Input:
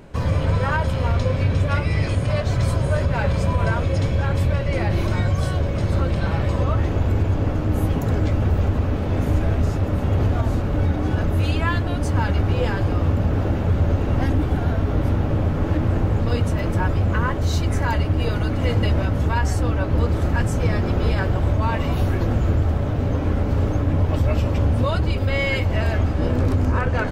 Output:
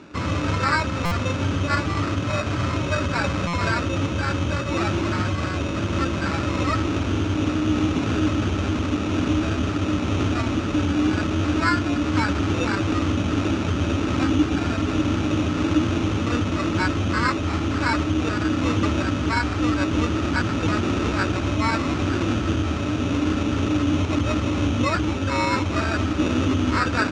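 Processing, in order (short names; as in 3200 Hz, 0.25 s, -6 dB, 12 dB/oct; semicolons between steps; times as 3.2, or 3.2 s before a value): sample-and-hold 14×; speaker cabinet 110–6600 Hz, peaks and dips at 140 Hz -8 dB, 300 Hz +9 dB, 490 Hz -6 dB, 750 Hz -4 dB, 1300 Hz +10 dB, 2500 Hz +4 dB; stuck buffer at 1.05/3.47, samples 256, times 10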